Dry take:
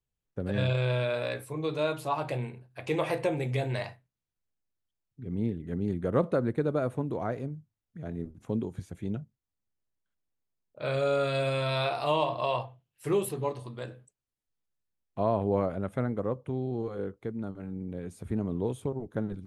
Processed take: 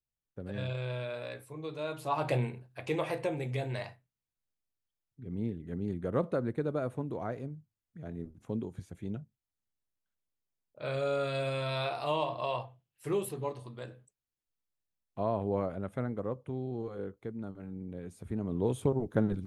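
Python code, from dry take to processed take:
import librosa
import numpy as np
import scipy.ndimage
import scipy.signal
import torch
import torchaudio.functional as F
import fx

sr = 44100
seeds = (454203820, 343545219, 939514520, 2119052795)

y = fx.gain(x, sr, db=fx.line((1.83, -8.5), (2.34, 3.5), (3.08, -4.5), (18.39, -4.5), (18.82, 4.0)))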